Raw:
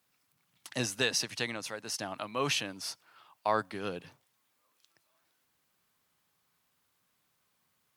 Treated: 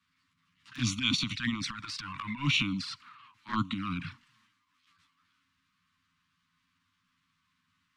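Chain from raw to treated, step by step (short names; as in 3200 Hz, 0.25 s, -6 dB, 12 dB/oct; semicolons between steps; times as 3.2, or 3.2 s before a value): formant shift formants -2 st; LPF 3700 Hz 12 dB/oct; transient shaper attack -12 dB, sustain +9 dB; elliptic band-stop 270–1100 Hz, stop band 40 dB; envelope flanger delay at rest 11.7 ms, full sweep at -34.5 dBFS; gain +8.5 dB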